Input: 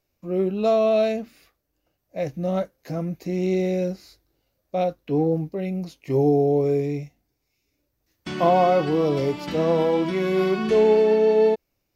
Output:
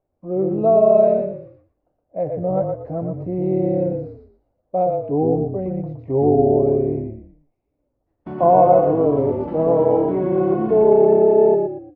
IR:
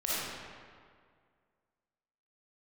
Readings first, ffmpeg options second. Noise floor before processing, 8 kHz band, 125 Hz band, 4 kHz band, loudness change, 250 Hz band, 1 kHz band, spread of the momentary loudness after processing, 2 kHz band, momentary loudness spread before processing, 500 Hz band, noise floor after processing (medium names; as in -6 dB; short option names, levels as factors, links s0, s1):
-76 dBFS, no reading, +3.0 dB, under -20 dB, +4.5 dB, +3.0 dB, +5.5 dB, 14 LU, under -10 dB, 13 LU, +5.0 dB, -74 dBFS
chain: -filter_complex "[0:a]lowpass=f=770:t=q:w=1.8,asplit=5[s0][s1][s2][s3][s4];[s1]adelay=117,afreqshift=-34,volume=0.631[s5];[s2]adelay=234,afreqshift=-68,volume=0.202[s6];[s3]adelay=351,afreqshift=-102,volume=0.0646[s7];[s4]adelay=468,afreqshift=-136,volume=0.0207[s8];[s0][s5][s6][s7][s8]amix=inputs=5:normalize=0"